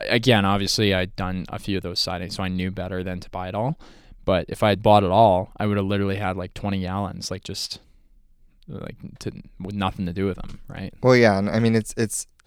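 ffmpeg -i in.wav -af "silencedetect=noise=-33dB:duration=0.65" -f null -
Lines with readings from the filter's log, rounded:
silence_start: 7.76
silence_end: 8.69 | silence_duration: 0.93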